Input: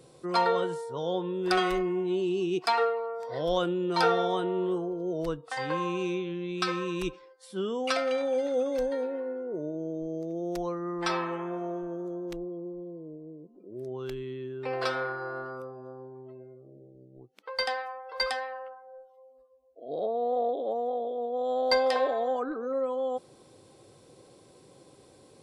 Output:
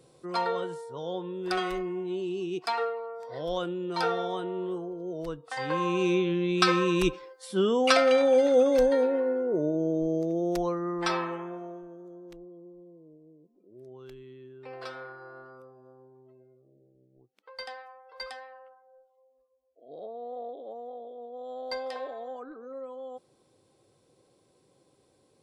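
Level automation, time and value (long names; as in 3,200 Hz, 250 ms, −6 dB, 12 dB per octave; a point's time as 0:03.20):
0:05.30 −4 dB
0:06.21 +7 dB
0:10.08 +7 dB
0:11.24 0 dB
0:11.94 −10.5 dB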